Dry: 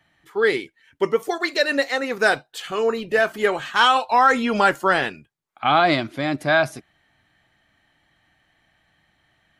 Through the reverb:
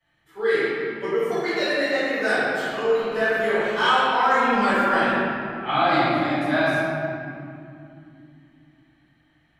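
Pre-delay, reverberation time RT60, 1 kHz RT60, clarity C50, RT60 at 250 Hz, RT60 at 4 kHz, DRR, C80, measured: 4 ms, 2.6 s, 2.4 s, -5.5 dB, 4.3 s, 1.5 s, -17.5 dB, -3.0 dB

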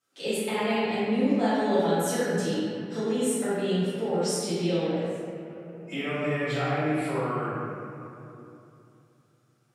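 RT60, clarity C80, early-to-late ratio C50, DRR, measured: 2.9 s, -2.5 dB, -5.5 dB, -16.0 dB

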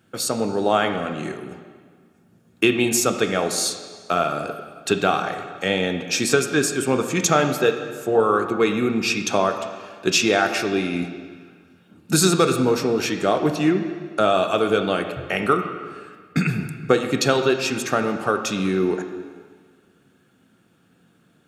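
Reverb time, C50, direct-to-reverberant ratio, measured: 1.7 s, 8.0 dB, 6.0 dB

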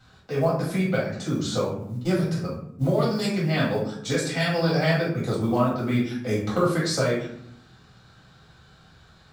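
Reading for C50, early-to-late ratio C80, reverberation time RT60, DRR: 3.5 dB, 8.0 dB, 0.70 s, -6.5 dB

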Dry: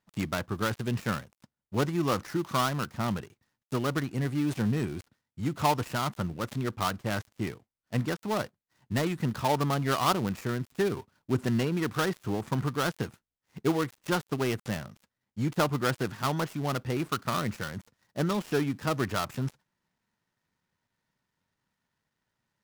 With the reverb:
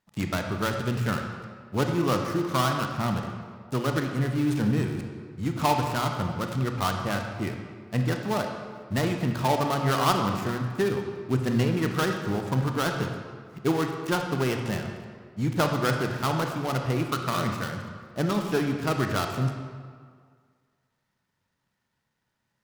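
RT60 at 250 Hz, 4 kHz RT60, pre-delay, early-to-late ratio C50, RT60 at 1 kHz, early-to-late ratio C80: 1.9 s, 1.2 s, 25 ms, 5.0 dB, 1.9 s, 6.0 dB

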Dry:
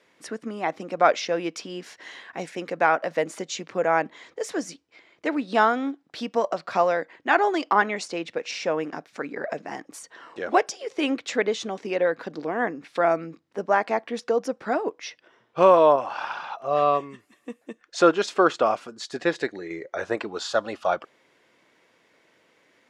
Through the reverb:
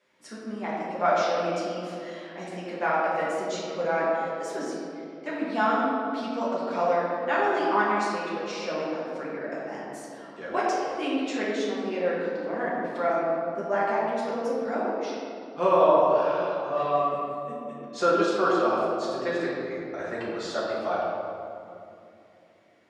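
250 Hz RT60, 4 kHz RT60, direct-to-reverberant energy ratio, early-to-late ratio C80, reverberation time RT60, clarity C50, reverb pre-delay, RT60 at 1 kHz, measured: 3.7 s, 1.4 s, -8.0 dB, 0.0 dB, 2.7 s, -1.5 dB, 5 ms, 2.5 s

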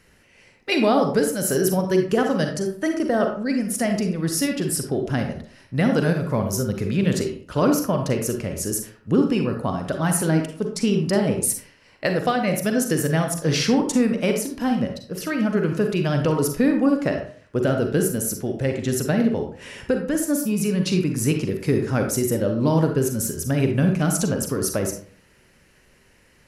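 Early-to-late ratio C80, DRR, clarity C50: 10.0 dB, 3.5 dB, 6.0 dB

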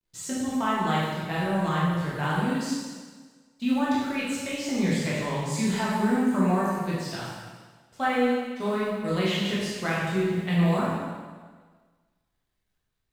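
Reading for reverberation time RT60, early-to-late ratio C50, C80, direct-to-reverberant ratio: 1.5 s, -1.5 dB, 1.5 dB, -7.5 dB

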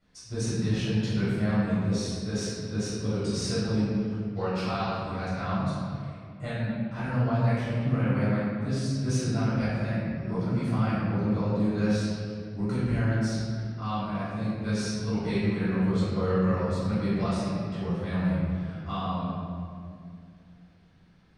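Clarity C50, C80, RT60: -4.0 dB, -1.0 dB, 2.3 s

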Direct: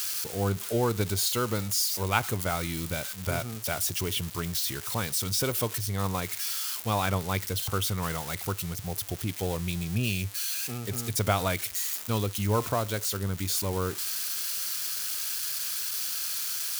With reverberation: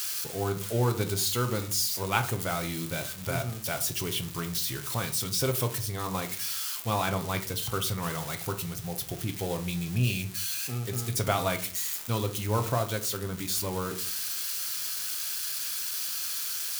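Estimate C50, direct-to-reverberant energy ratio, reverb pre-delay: 13.5 dB, 6.0 dB, 6 ms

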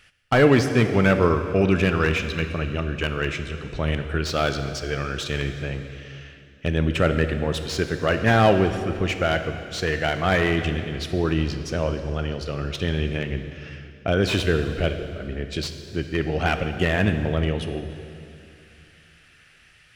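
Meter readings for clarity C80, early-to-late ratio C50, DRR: 9.0 dB, 8.5 dB, 7.5 dB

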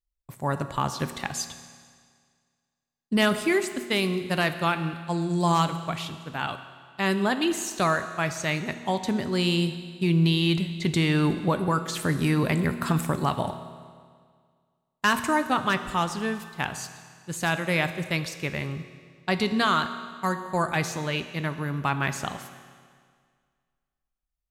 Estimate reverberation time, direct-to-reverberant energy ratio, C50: 1.9 s, 9.0 dB, 11.0 dB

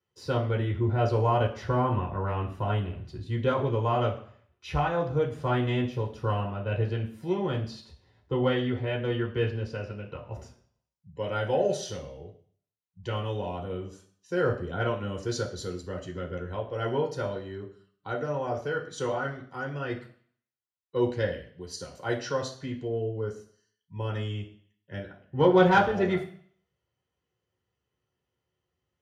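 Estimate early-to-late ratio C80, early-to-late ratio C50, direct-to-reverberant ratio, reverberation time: 14.0 dB, 10.0 dB, -2.5 dB, 0.55 s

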